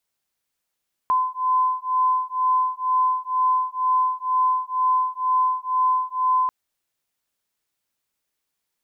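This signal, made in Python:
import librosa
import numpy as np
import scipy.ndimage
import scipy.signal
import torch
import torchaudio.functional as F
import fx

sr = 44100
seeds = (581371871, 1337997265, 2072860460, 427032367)

y = fx.two_tone_beats(sr, length_s=5.39, hz=1020.0, beat_hz=2.1, level_db=-21.5)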